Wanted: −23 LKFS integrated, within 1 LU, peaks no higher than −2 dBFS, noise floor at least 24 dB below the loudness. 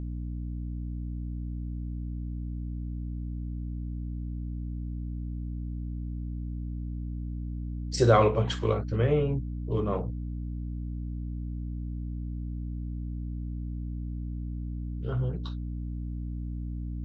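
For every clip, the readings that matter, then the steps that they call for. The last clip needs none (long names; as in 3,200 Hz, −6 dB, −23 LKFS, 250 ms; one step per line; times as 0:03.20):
mains hum 60 Hz; hum harmonics up to 300 Hz; level of the hum −32 dBFS; integrated loudness −32.5 LKFS; sample peak −8.0 dBFS; target loudness −23.0 LKFS
→ hum removal 60 Hz, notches 5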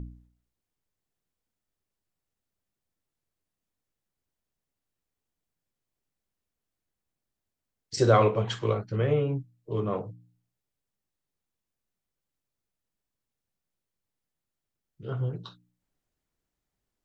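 mains hum none found; integrated loudness −27.5 LKFS; sample peak −8.5 dBFS; target loudness −23.0 LKFS
→ level +4.5 dB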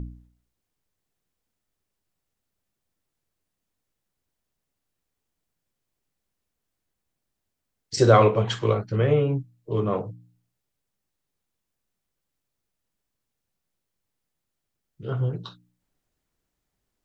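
integrated loudness −23.0 LKFS; sample peak −4.0 dBFS; background noise floor −82 dBFS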